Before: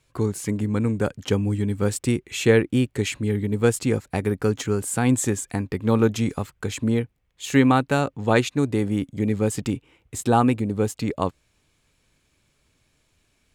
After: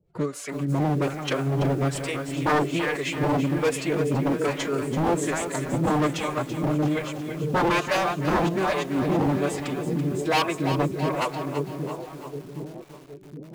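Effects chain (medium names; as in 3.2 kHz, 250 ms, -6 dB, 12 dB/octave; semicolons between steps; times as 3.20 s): overload inside the chain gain 8.5 dB; low-pass 2.5 kHz 6 dB/octave; two-band feedback delay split 510 Hz, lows 769 ms, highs 345 ms, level -6.5 dB; on a send at -18 dB: reverberation RT60 1.2 s, pre-delay 5 ms; on the sum: harmonic tremolo 1.2 Hz, depth 100%, crossover 510 Hz; wavefolder -21 dBFS; bass shelf 140 Hz -8.5 dB; formant-preserving pitch shift +5 st; bit-crushed delay 333 ms, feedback 55%, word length 8-bit, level -10 dB; trim +6.5 dB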